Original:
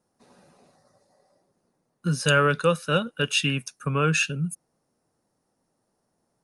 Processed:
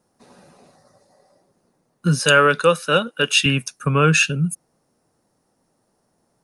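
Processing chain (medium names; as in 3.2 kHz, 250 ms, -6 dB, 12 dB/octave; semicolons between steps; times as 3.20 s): 2.19–3.46 s: Bessel high-pass 270 Hz, order 2; trim +7 dB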